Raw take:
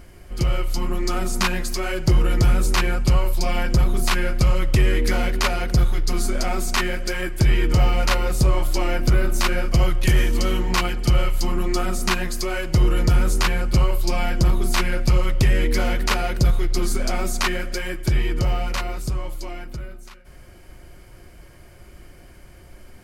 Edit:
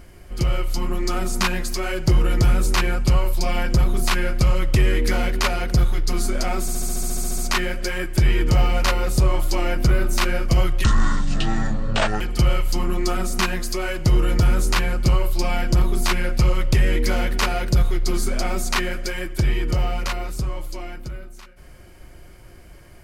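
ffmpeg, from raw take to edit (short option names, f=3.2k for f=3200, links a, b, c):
-filter_complex "[0:a]asplit=14[a][b][c][d][e][f][g][h][i][j][k][l][m][n];[a]atrim=end=6.682[o];[b]atrim=start=6.608:end=6.682[p];[c]atrim=start=6.608:end=6.682[q];[d]atrim=start=6.608:end=6.682[r];[e]atrim=start=6.608:end=6.682[s];[f]atrim=start=6.608:end=6.682[t];[g]atrim=start=6.608:end=6.682[u];[h]atrim=start=6.608:end=6.682[v];[i]atrim=start=6.608:end=6.682[w];[j]atrim=start=6.608:end=6.682[x];[k]atrim=start=6.608:end=6.682[y];[l]atrim=start=6.608:end=10.074[z];[m]atrim=start=10.07:end=10.89,asetpts=PTS-STARTPTS,asetrate=26460,aresample=44100[aa];[n]atrim=start=10.886[ab];[o][p]acrossfade=d=0.004:c1=hsin:c2=hsin[ac];[ac][q]acrossfade=d=0.004:c1=hsin:c2=hsin[ad];[ad][r]acrossfade=d=0.004:c1=hsin:c2=hsin[ae];[ae][s]acrossfade=d=0.004:c1=hsin:c2=hsin[af];[af][t]acrossfade=d=0.004:c1=hsin:c2=hsin[ag];[ag][u]acrossfade=d=0.004:c1=hsin:c2=hsin[ah];[ah][v]acrossfade=d=0.004:c1=hsin:c2=hsin[ai];[ai][w]acrossfade=d=0.004:c1=hsin:c2=hsin[aj];[aj][x]acrossfade=d=0.004:c1=hsin:c2=hsin[ak];[ak][y]acrossfade=d=0.004:c1=hsin:c2=hsin[al];[al][z]acrossfade=d=0.004:c1=hsin:c2=hsin[am];[am][aa]acrossfade=d=0.004:c1=hsin:c2=hsin[an];[an][ab]acrossfade=d=0.004:c1=hsin:c2=hsin"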